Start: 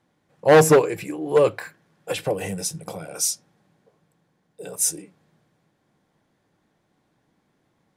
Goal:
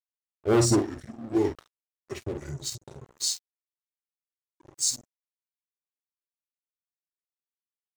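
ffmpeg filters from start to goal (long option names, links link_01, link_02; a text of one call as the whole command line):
ffmpeg -i in.wav -filter_complex "[0:a]equalizer=frequency=690:width=0.32:gain=-8.5,afftdn=noise_reduction=13:noise_floor=-41,acrossover=split=1300[link_01][link_02];[link_01]acontrast=78[link_03];[link_03][link_02]amix=inputs=2:normalize=0,asetrate=33038,aresample=44100,atempo=1.33484,aecho=1:1:15|48:0.158|0.447,aeval=exprs='sgn(val(0))*max(abs(val(0))-0.02,0)':channel_layout=same,adynamicequalizer=threshold=0.0126:dfrequency=3600:dqfactor=0.7:tfrequency=3600:tqfactor=0.7:attack=5:release=100:ratio=0.375:range=3:mode=boostabove:tftype=highshelf,volume=-7dB" out.wav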